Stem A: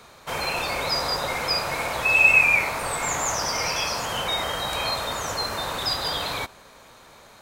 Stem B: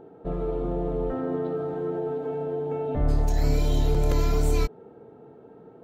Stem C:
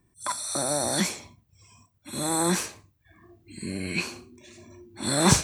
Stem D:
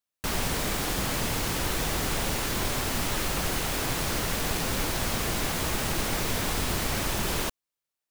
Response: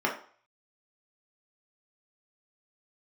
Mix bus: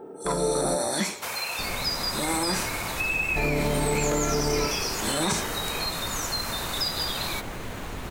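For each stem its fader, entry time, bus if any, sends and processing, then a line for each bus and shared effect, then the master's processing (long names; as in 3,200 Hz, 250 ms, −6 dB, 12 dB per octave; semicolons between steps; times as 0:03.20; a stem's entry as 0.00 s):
−2.5 dB, 0.95 s, no send, notch filter 3,200 Hz, Q 15; downward compressor 4 to 1, threshold −29 dBFS, peak gain reduction 14.5 dB; spectral tilt +3 dB per octave
−2.0 dB, 0.00 s, muted 0:00.76–0:03.36, send −5 dB, no processing
−2.5 dB, 0.00 s, send −14 dB, no processing
−5.5 dB, 1.35 s, no send, running median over 9 samples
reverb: on, RT60 0.45 s, pre-delay 3 ms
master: brickwall limiter −15.5 dBFS, peak gain reduction 9 dB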